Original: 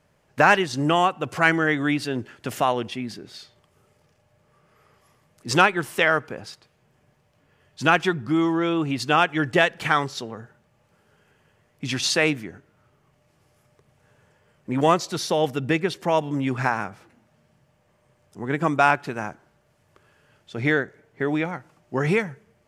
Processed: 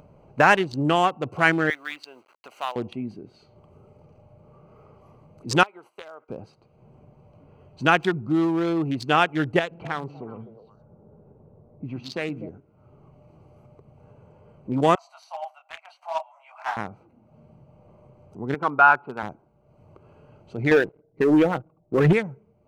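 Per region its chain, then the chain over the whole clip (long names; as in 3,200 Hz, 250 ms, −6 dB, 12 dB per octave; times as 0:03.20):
0:01.70–0:02.76: hold until the input has moved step −40.5 dBFS + high-pass filter 1,200 Hz
0:05.63–0:06.29: noise gate −38 dBFS, range −15 dB + high-pass filter 640 Hz + downward compressor 3 to 1, threshold −35 dBFS
0:09.59–0:12.49: low-pass that shuts in the quiet parts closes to 670 Hz, open at −16 dBFS + downward compressor 1.5 to 1, threshold −34 dBFS + echo through a band-pass that steps 124 ms, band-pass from 190 Hz, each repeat 1.4 octaves, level −6 dB
0:14.95–0:16.77: Butterworth high-pass 640 Hz 96 dB per octave + micro pitch shift up and down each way 21 cents
0:18.54–0:19.23: hard clipping −10 dBFS + loudspeaker in its box 170–2,600 Hz, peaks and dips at 170 Hz −10 dB, 310 Hz −9 dB, 630 Hz −5 dB, 900 Hz +5 dB, 1,400 Hz +9 dB, 2,000 Hz −9 dB
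0:20.71–0:22.13: spectral envelope exaggerated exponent 2 + comb filter 6.3 ms, depth 33% + leveller curve on the samples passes 2
whole clip: adaptive Wiener filter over 25 samples; upward compression, threshold −40 dBFS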